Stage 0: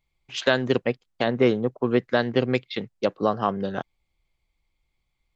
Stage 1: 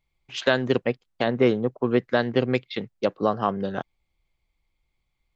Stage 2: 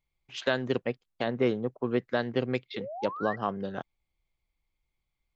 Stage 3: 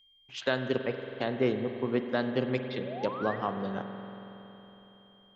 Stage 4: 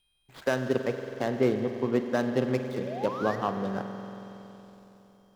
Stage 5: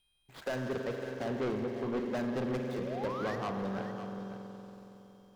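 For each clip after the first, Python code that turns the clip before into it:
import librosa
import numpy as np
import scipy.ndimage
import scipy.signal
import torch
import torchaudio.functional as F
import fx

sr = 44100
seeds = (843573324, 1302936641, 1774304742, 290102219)

y1 = fx.high_shelf(x, sr, hz=5100.0, db=-4.0)
y2 = fx.spec_paint(y1, sr, seeds[0], shape='rise', start_s=2.74, length_s=0.62, low_hz=400.0, high_hz=2000.0, level_db=-32.0)
y2 = F.gain(torch.from_numpy(y2), -6.5).numpy()
y3 = fx.rev_spring(y2, sr, rt60_s=3.7, pass_ms=(46,), chirp_ms=50, drr_db=6.5)
y3 = y3 + 10.0 ** (-59.0 / 20.0) * np.sin(2.0 * np.pi * 3200.0 * np.arange(len(y3)) / sr)
y3 = F.gain(torch.from_numpy(y3), -1.5).numpy()
y4 = scipy.signal.medfilt(y3, 15)
y4 = F.gain(torch.from_numpy(y4), 3.0).numpy()
y5 = 10.0 ** (-27.5 / 20.0) * np.tanh(y4 / 10.0 ** (-27.5 / 20.0))
y5 = y5 + 10.0 ** (-12.0 / 20.0) * np.pad(y5, (int(553 * sr / 1000.0), 0))[:len(y5)]
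y5 = F.gain(torch.from_numpy(y5), -2.0).numpy()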